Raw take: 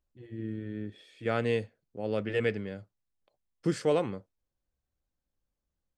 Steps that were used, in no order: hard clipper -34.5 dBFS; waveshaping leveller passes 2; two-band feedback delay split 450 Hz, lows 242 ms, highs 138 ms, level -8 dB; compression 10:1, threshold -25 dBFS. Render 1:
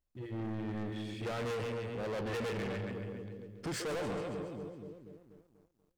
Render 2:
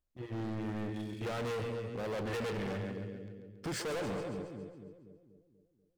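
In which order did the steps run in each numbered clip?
compression > two-band feedback delay > hard clipper > waveshaping leveller; waveshaping leveller > compression > two-band feedback delay > hard clipper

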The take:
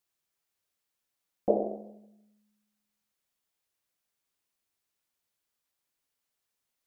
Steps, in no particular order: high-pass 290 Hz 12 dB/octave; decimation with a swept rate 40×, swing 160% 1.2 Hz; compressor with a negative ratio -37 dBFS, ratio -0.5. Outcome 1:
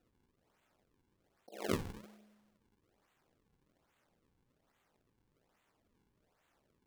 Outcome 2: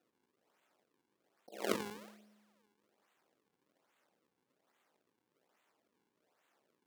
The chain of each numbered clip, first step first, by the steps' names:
compressor with a negative ratio > high-pass > decimation with a swept rate; compressor with a negative ratio > decimation with a swept rate > high-pass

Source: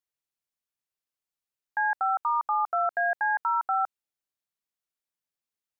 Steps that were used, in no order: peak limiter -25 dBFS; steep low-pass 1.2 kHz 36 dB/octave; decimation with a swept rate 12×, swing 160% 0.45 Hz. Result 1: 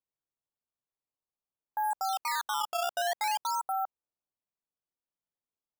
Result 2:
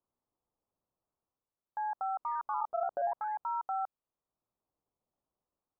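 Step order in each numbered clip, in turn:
steep low-pass > peak limiter > decimation with a swept rate; peak limiter > decimation with a swept rate > steep low-pass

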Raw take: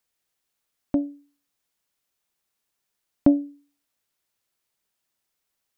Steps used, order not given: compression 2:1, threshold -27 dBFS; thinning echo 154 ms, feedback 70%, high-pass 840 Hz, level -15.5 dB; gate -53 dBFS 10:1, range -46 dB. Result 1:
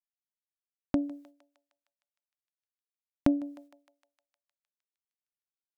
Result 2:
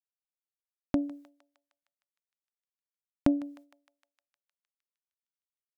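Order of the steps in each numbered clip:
gate > thinning echo > compression; compression > gate > thinning echo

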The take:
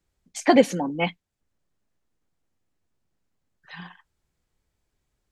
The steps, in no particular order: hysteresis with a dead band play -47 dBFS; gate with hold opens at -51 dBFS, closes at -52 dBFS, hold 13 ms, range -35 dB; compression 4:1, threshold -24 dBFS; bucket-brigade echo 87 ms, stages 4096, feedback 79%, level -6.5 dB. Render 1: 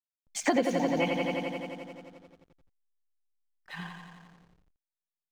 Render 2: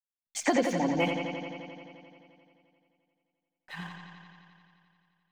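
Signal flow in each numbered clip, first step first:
gate with hold > bucket-brigade echo > compression > hysteresis with a dead band; compression > hysteresis with a dead band > gate with hold > bucket-brigade echo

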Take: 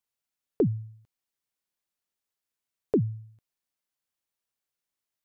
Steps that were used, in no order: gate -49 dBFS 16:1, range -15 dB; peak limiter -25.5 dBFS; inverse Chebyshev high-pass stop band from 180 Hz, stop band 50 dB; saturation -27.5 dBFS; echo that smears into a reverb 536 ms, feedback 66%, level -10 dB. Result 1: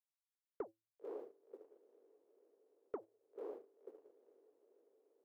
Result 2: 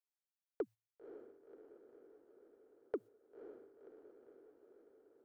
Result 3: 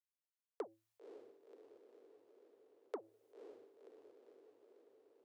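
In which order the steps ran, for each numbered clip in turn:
echo that smears into a reverb > peak limiter > saturation > inverse Chebyshev high-pass > gate; inverse Chebyshev high-pass > peak limiter > gate > saturation > echo that smears into a reverb; gate > peak limiter > echo that smears into a reverb > saturation > inverse Chebyshev high-pass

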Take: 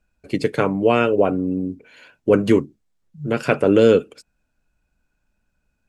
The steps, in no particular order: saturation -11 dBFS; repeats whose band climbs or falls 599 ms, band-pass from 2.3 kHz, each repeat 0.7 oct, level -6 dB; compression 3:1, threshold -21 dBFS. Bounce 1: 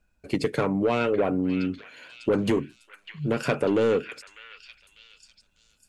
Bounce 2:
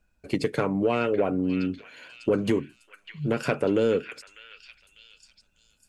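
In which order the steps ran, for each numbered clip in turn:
saturation > compression > repeats whose band climbs or falls; compression > saturation > repeats whose band climbs or falls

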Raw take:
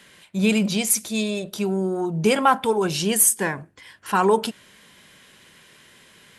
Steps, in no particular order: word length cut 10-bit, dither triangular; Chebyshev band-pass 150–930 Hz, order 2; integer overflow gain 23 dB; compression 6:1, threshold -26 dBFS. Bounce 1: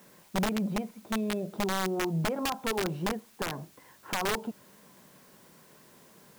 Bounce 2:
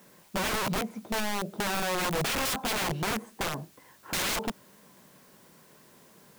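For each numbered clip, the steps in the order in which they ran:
compression > Chebyshev band-pass > integer overflow > word length cut; Chebyshev band-pass > word length cut > integer overflow > compression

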